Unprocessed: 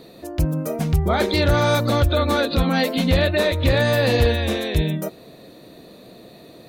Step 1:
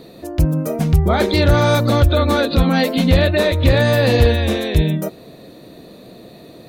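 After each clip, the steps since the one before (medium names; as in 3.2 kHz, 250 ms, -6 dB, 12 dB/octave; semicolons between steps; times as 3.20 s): bass shelf 450 Hz +3.5 dB; trim +2 dB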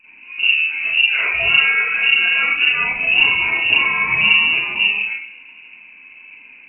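flange 0.86 Hz, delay 6 ms, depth 7.3 ms, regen +52%; reverberation RT60 0.60 s, pre-delay 33 ms, DRR -11.5 dB; frequency inversion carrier 2.8 kHz; trim -12 dB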